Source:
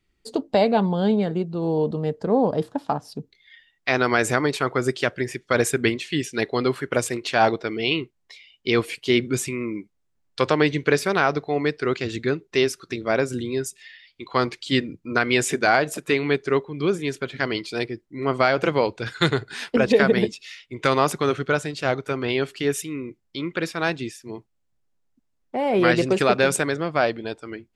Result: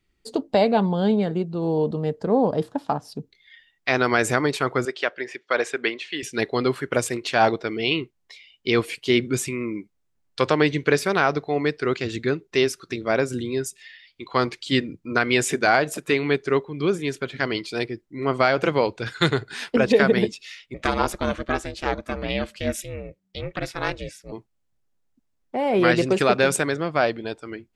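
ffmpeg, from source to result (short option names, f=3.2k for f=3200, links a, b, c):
-filter_complex "[0:a]asettb=1/sr,asplit=3[a][b][c];[a]atrim=end=4.854[d];[b]atrim=start=4.85:end=6.23,asetpts=PTS-STARTPTS,afade=t=in:d=0.004:c=qsin,afade=t=out:st=1.376:d=0.004:c=qsin,highpass=470,lowpass=4.1k[e];[c]atrim=start=6.226[f];[d][e]acrossfade=d=0.004:c1=hsin:c2=qsin[g];[g][f]acrossfade=d=0.004:c1=qsin:c2=hsin,asettb=1/sr,asplit=3[h][i][j];[h]atrim=end=20.744[k];[i]atrim=start=20.74:end=24.32,asetpts=PTS-STARTPTS,afade=t=in:d=0.004:c=qsin,afade=t=out:st=3.576:d=0.004:c=qsin,aeval=exprs='val(0)*sin(2*PI*190*n/s)':c=same[l];[j]atrim=start=24.316[m];[k][l]acrossfade=d=0.004:c1=hsin:c2=qsin[n];[n][m]acrossfade=d=0.004:c1=qsin:c2=hsin"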